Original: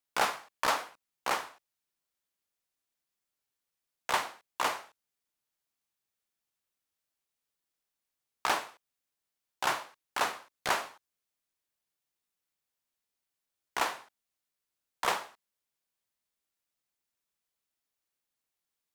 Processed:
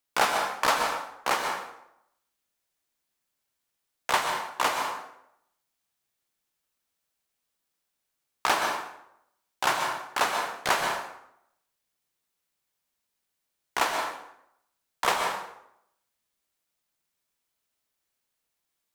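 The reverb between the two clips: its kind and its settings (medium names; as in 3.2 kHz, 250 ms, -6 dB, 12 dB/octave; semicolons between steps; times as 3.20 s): plate-style reverb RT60 0.76 s, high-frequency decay 0.7×, pre-delay 110 ms, DRR 3.5 dB; trim +4.5 dB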